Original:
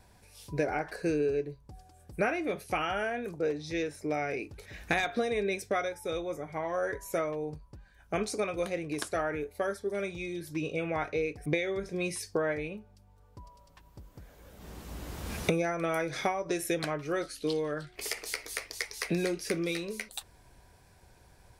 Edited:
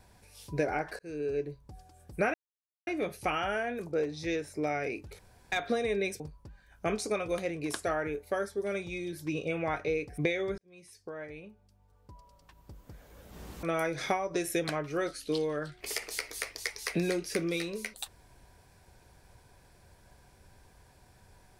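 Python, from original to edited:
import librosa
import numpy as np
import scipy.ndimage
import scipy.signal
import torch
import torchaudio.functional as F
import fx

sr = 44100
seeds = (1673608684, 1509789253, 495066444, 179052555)

y = fx.edit(x, sr, fx.fade_in_span(start_s=0.99, length_s=0.45),
    fx.insert_silence(at_s=2.34, length_s=0.53),
    fx.room_tone_fill(start_s=4.66, length_s=0.33),
    fx.cut(start_s=5.67, length_s=1.81),
    fx.fade_in_span(start_s=11.86, length_s=2.22),
    fx.cut(start_s=14.91, length_s=0.87), tone=tone)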